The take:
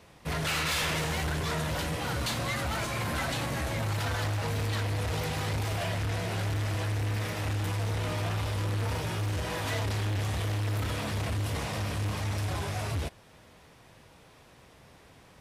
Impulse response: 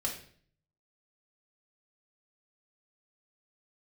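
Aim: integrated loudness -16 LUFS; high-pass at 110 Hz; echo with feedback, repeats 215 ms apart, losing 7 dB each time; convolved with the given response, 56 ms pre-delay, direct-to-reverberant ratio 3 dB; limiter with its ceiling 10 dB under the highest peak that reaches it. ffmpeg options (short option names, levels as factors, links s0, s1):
-filter_complex "[0:a]highpass=110,alimiter=level_in=2.24:limit=0.0631:level=0:latency=1,volume=0.447,aecho=1:1:215|430|645|860|1075:0.447|0.201|0.0905|0.0407|0.0183,asplit=2[s0][s1];[1:a]atrim=start_sample=2205,adelay=56[s2];[s1][s2]afir=irnorm=-1:irlink=0,volume=0.473[s3];[s0][s3]amix=inputs=2:normalize=0,volume=10"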